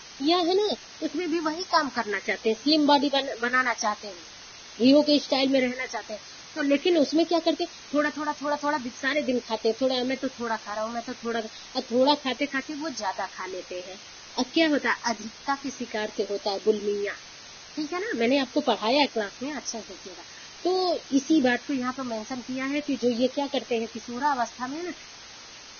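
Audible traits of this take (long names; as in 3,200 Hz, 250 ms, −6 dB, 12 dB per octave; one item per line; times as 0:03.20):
phaser sweep stages 4, 0.44 Hz, lowest notch 440–1,800 Hz
a quantiser's noise floor 8 bits, dither triangular
Ogg Vorbis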